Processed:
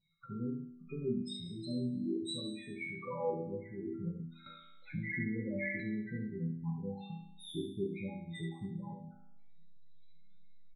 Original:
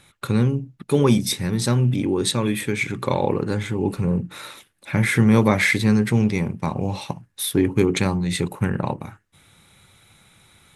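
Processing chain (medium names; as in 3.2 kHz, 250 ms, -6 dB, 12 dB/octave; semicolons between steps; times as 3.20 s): in parallel at -9.5 dB: hysteresis with a dead band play -29 dBFS; on the sum: loudest bins only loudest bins 8; chord resonator E3 minor, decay 0.75 s; early reflections 18 ms -11.5 dB, 70 ms -6.5 dB; 4.46–5.80 s: three bands compressed up and down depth 40%; trim +3.5 dB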